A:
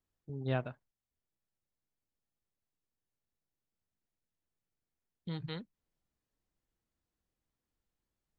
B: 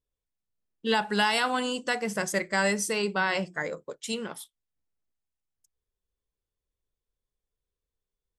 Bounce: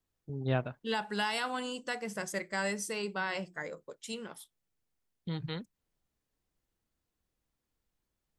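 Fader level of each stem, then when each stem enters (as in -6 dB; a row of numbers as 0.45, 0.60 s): +3.0, -8.0 dB; 0.00, 0.00 s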